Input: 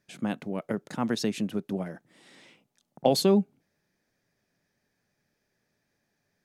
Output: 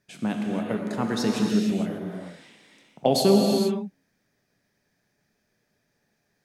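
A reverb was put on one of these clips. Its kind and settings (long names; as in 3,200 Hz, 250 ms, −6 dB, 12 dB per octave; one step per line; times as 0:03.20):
reverb whose tail is shaped and stops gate 490 ms flat, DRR 0 dB
level +1 dB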